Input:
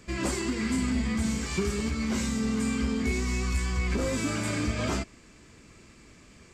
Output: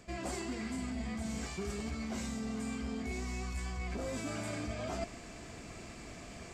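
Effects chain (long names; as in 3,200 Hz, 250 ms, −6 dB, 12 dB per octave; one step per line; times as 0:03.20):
parametric band 700 Hz +13.5 dB 0.33 octaves
reversed playback
downward compressor 8 to 1, threshold −41 dBFS, peak gain reduction 18 dB
reversed playback
level +4.5 dB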